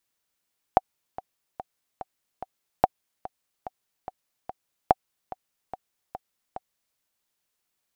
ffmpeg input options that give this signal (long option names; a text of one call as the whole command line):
ffmpeg -f lavfi -i "aevalsrc='pow(10,(-3-18*gte(mod(t,5*60/145),60/145))/20)*sin(2*PI*753*mod(t,60/145))*exp(-6.91*mod(t,60/145)/0.03)':duration=6.2:sample_rate=44100" out.wav